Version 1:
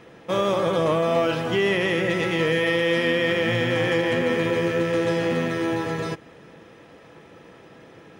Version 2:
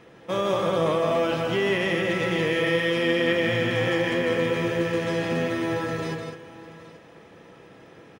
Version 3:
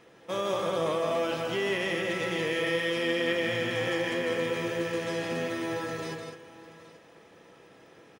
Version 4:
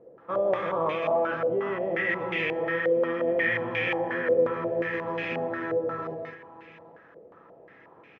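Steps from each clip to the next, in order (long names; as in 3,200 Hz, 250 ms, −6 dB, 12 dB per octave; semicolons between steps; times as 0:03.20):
multi-tap delay 159/203/752/826 ms −6/−8.5/−19.5/−18 dB; level −3 dB
bass and treble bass −5 dB, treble +5 dB; level −5 dB
low-pass on a step sequencer 5.6 Hz 530–2,400 Hz; level −2 dB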